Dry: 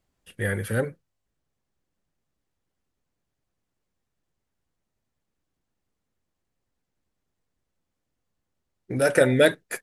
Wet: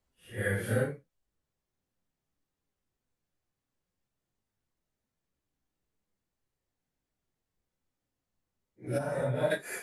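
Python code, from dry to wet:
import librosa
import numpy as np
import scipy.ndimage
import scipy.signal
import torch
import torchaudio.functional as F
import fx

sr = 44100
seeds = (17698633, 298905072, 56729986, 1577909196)

y = fx.phase_scramble(x, sr, seeds[0], window_ms=200)
y = fx.curve_eq(y, sr, hz=(180.0, 350.0, 990.0, 1600.0), db=(0, -18, 4, -16), at=(8.97, 9.5), fade=0.02)
y = F.gain(torch.from_numpy(y), -4.0).numpy()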